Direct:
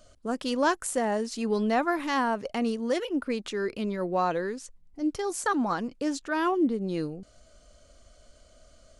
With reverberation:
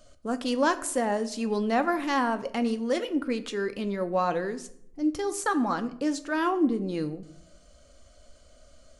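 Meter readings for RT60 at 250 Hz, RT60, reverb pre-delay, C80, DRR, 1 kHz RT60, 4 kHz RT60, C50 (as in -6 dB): 0.95 s, 0.70 s, 4 ms, 19.0 dB, 9.5 dB, 0.65 s, 0.45 s, 15.5 dB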